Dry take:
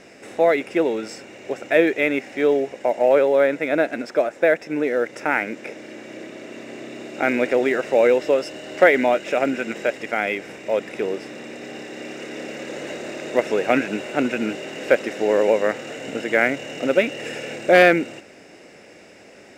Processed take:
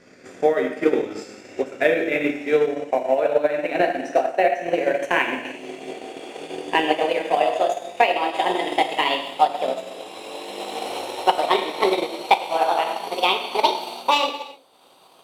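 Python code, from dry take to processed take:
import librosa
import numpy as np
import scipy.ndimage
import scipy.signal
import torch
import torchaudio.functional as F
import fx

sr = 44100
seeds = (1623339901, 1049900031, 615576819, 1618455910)

y = fx.speed_glide(x, sr, from_pct=90, to_pct=167)
y = fx.rev_gated(y, sr, seeds[0], gate_ms=370, shape='falling', drr_db=-1.0)
y = fx.transient(y, sr, attack_db=7, sustain_db=-6)
y = fx.rider(y, sr, range_db=5, speed_s=0.5)
y = y * librosa.db_to_amplitude(-6.0)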